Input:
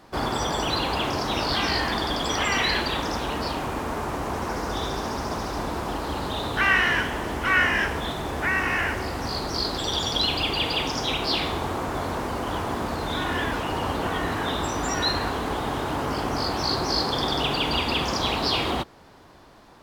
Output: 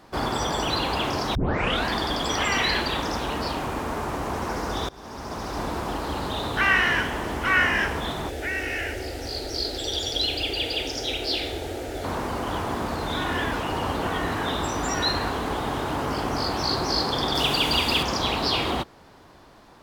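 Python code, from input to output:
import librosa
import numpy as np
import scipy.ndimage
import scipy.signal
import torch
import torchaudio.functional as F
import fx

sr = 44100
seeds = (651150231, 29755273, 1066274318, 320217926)

y = fx.fixed_phaser(x, sr, hz=440.0, stages=4, at=(8.29, 12.04))
y = fx.high_shelf(y, sr, hz=4500.0, db=10.5, at=(17.35, 18.03))
y = fx.edit(y, sr, fx.tape_start(start_s=1.35, length_s=0.55),
    fx.fade_in_from(start_s=4.89, length_s=0.74, floor_db=-22.5), tone=tone)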